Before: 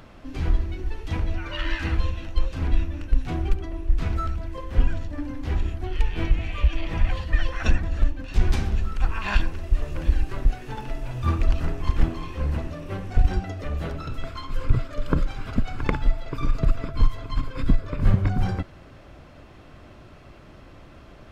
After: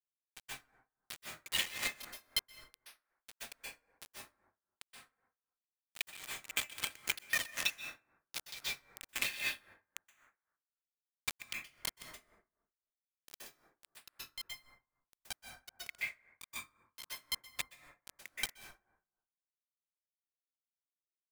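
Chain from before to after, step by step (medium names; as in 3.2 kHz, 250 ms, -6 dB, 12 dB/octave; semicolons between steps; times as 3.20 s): steep high-pass 2 kHz 48 dB/octave; dynamic bell 4.3 kHz, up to +4 dB, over -52 dBFS, Q 1.2; reverb removal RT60 1.8 s; distance through air 71 m; band-stop 2.8 kHz, Q 9.4; comb 3.8 ms, depth 40%; word length cut 6-bit, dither none; compression 2.5:1, threshold -41 dBFS, peak gain reduction 9 dB; plate-style reverb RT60 0.83 s, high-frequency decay 0.4×, pre-delay 115 ms, DRR 3 dB; logarithmic tremolo 3.8 Hz, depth 18 dB; trim +11.5 dB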